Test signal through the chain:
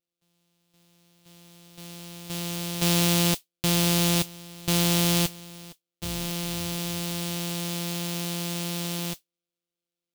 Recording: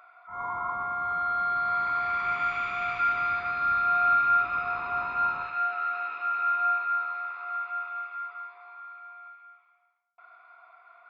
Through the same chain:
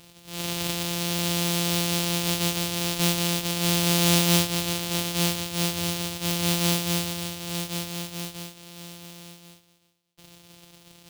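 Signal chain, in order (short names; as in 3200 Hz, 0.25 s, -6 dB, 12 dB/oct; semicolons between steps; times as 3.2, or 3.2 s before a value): sample sorter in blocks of 256 samples; modulation noise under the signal 15 dB; resonant high shelf 2300 Hz +9 dB, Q 1.5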